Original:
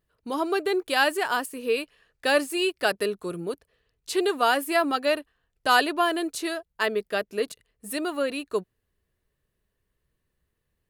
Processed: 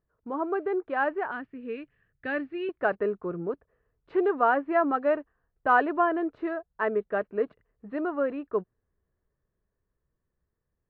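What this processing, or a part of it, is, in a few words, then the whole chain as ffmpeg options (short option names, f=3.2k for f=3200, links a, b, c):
action camera in a waterproof case: -filter_complex "[0:a]asettb=1/sr,asplit=3[a][b][c];[a]atrim=end=1.314[d];[b]atrim=start=1.31:end=2.69,asetpts=PTS-STARTPTS,afade=t=in:d=0.004:c=qsin,afade=t=out:st=1.376:d=0.004:c=qsin,equalizer=f=125:t=o:w=1:g=10,equalizer=f=500:t=o:w=1:g=-8,equalizer=f=1k:t=o:w=1:g=-12,equalizer=f=2k:t=o:w=1:g=4,equalizer=f=4k:t=o:w=1:g=7,equalizer=f=8k:t=o:w=1:g=-11[e];[c]atrim=start=2.686[f];[d][e]acrossfade=d=0.004:c1=hsin:c2=qsin[g];[g][f]acrossfade=d=0.004:c1=qsin:c2=hsin,lowpass=f=1.6k:w=0.5412,lowpass=f=1.6k:w=1.3066,dynaudnorm=f=500:g=9:m=3dB,volume=-3dB" -ar 22050 -c:a aac -b:a 48k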